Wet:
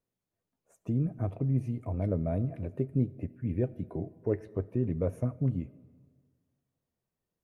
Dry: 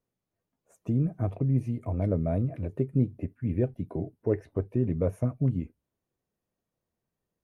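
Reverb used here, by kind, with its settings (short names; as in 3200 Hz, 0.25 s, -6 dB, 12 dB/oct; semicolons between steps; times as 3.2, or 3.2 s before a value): digital reverb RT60 1.7 s, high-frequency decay 0.65×, pre-delay 30 ms, DRR 19.5 dB; gain -3 dB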